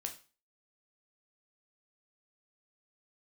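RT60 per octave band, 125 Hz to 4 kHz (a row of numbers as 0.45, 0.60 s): 0.35, 0.40, 0.35, 0.35, 0.35, 0.35 s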